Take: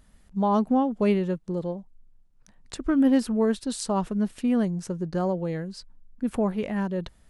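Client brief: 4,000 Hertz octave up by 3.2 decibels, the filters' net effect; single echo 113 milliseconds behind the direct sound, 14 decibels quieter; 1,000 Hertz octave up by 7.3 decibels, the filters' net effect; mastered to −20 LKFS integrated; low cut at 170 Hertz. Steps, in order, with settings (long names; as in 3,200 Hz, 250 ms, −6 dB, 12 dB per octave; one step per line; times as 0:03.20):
high-pass filter 170 Hz
parametric band 1,000 Hz +9 dB
parametric band 4,000 Hz +3.5 dB
single-tap delay 113 ms −14 dB
level +4.5 dB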